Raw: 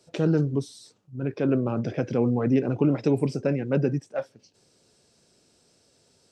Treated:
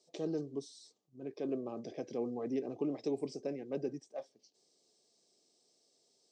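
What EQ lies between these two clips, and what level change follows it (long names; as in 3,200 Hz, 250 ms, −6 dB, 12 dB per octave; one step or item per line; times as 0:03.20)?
Butterworth band-reject 1,400 Hz, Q 4.3
loudspeaker in its box 480–7,300 Hz, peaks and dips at 540 Hz −6 dB, 960 Hz −8 dB, 1,700 Hz −8 dB, 2,600 Hz −7 dB
parametric band 1,900 Hz −8 dB 2.8 octaves
−3.0 dB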